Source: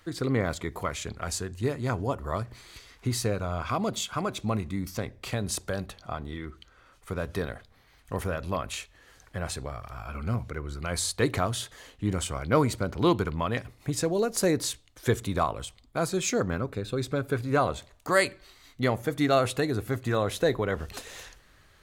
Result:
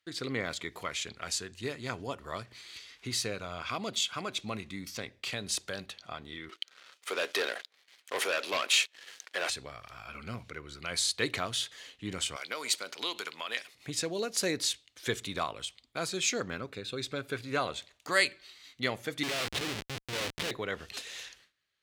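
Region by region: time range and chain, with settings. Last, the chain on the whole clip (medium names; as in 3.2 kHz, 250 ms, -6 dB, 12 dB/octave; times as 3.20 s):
6.49–9.50 s: high-pass 350 Hz 24 dB/octave + waveshaping leveller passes 3
12.36–13.75 s: high-pass 480 Hz + compression 4:1, threshold -29 dBFS + treble shelf 3.1 kHz +10 dB
19.23–20.51 s: phase dispersion highs, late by 78 ms, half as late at 1.7 kHz + transient shaper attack -11 dB, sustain 0 dB + Schmitt trigger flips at -29.5 dBFS
whole clip: frequency weighting D; gate with hold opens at -41 dBFS; trim -7.5 dB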